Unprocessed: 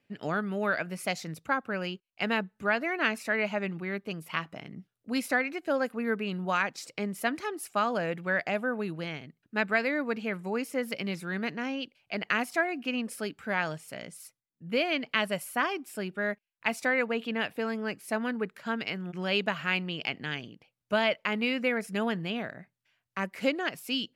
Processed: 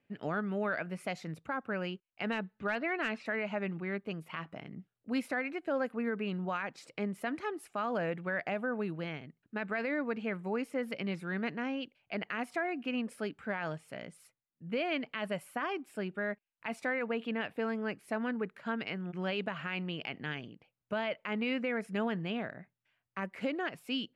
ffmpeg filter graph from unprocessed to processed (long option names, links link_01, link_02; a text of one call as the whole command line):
ffmpeg -i in.wav -filter_complex "[0:a]asettb=1/sr,asplit=3[link_01][link_02][link_03];[link_01]atrim=end=2.324[link_04];[link_02]atrim=start=2.32:end=3.26,asetpts=PTS-STARTPTS,afade=type=in:duration=0.004:curve=qsin,afade=type=out:start_time=0.936:duration=0.004:curve=qsin,lowpass=frequency=4200:width_type=q:width=1.7,asoftclip=type=hard:threshold=-17.5dB[link_05];[link_03]atrim=start=3.256[link_06];[link_04][link_05]acrossfade=duration=0.004:curve1=hsin:curve2=qsin[link_07];[link_07][link_06]acrossfade=duration=0.004:curve1=qsin:curve2=hsin,lowpass=7500,equalizer=frequency=5700:width_type=o:width=1.4:gain=-10,alimiter=limit=-22.5dB:level=0:latency=1:release=49,volume=-2dB" out.wav